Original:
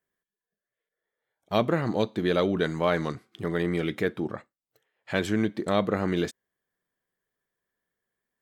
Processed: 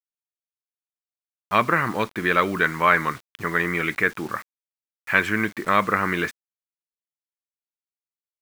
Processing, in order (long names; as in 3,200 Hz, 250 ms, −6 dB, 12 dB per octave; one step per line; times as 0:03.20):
flat-topped bell 1,600 Hz +14.5 dB
bit reduction 7 bits
level −1 dB